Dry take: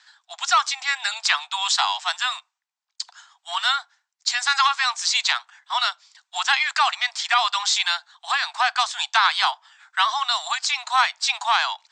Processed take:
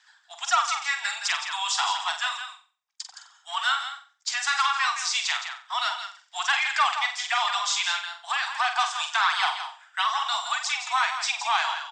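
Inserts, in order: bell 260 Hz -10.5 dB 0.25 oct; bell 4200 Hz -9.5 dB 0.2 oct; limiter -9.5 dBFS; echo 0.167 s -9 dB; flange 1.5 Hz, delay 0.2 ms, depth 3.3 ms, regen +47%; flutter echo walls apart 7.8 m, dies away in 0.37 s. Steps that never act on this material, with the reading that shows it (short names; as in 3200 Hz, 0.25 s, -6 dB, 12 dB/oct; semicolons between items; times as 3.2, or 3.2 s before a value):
bell 260 Hz: input band starts at 600 Hz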